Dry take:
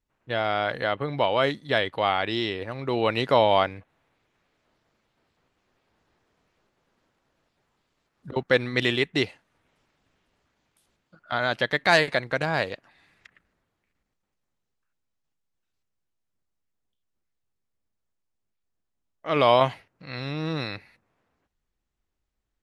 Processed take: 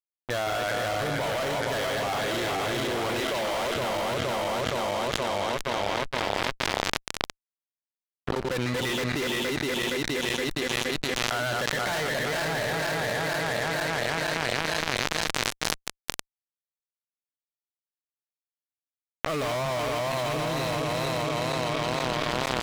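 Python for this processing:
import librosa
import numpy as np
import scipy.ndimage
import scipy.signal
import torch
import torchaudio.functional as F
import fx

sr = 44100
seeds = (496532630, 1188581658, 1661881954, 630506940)

y = fx.reverse_delay_fb(x, sr, ms=234, feedback_pct=81, wet_db=-3.0)
y = fx.highpass(y, sr, hz=290.0, slope=12, at=(3.2, 3.76))
y = fx.fuzz(y, sr, gain_db=31.0, gate_db=-36.0)
y = fx.env_flatten(y, sr, amount_pct=100)
y = y * librosa.db_to_amplitude(-14.0)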